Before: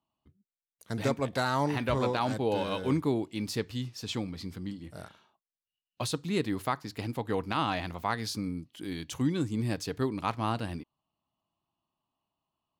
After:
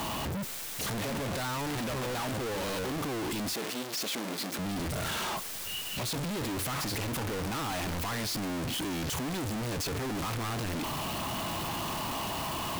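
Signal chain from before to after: one-bit comparator; 3.54–4.59 s: high-pass 210 Hz 24 dB/octave

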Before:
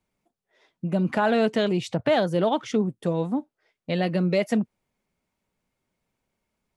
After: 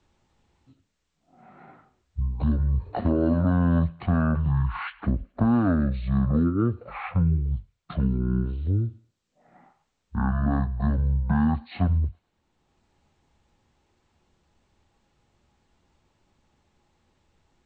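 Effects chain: wide varispeed 0.383×; thinning echo 106 ms, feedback 50%, high-pass 740 Hz, level -24 dB; three bands compressed up and down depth 40%

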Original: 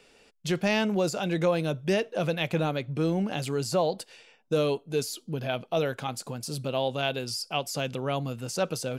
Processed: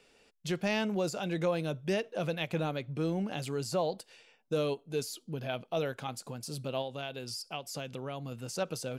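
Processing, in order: 6.81–8.32 s: compression, threshold -29 dBFS, peak gain reduction 7 dB; endings held to a fixed fall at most 480 dB/s; trim -5.5 dB

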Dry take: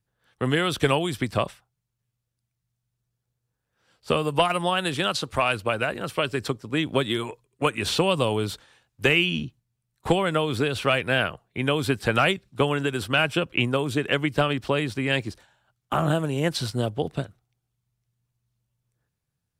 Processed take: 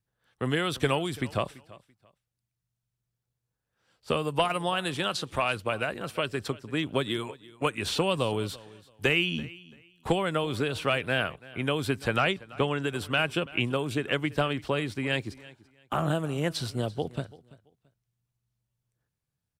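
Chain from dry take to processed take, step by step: 12.16–12.83 s: low-pass 7.2 kHz 12 dB/octave; on a send: feedback delay 336 ms, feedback 23%, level -20.5 dB; on the sum: trim -4.5 dB

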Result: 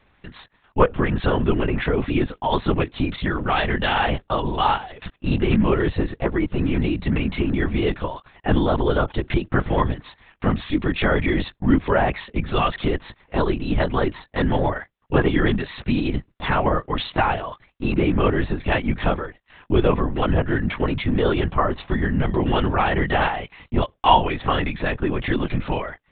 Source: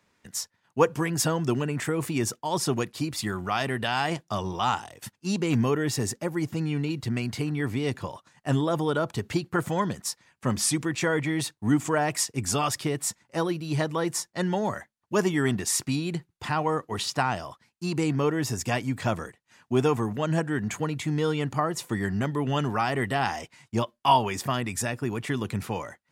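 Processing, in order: in parallel at +1 dB: compression, threshold -32 dBFS, peak gain reduction 16.5 dB; on the sum: LPC vocoder at 8 kHz whisper; trim +3.5 dB

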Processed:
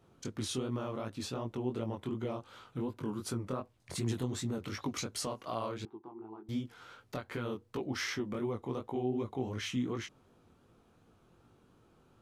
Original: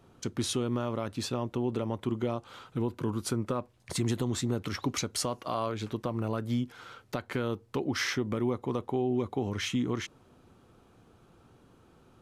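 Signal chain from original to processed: chorus 2.7 Hz, delay 17.5 ms, depth 6.4 ms; 5.85–6.49 s: two resonant band-passes 550 Hz, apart 1.2 oct; trim -2.5 dB

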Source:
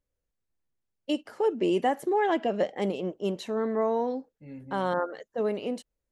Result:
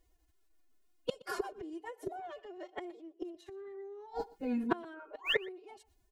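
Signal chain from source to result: comb 5 ms, depth 81%; painted sound rise, 5.10–5.42 s, 510–2900 Hz -36 dBFS; inverted gate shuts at -25 dBFS, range -32 dB; formant-preserving pitch shift +10 st; delay 121 ms -22 dB; trim +10.5 dB

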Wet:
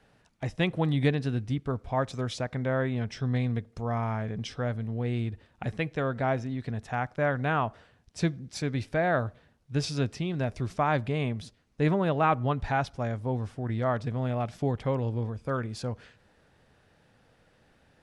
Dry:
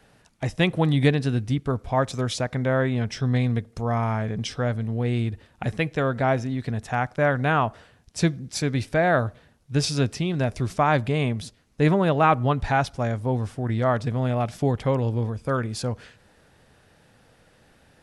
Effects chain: treble shelf 8.7 kHz -11.5 dB; trim -5.5 dB

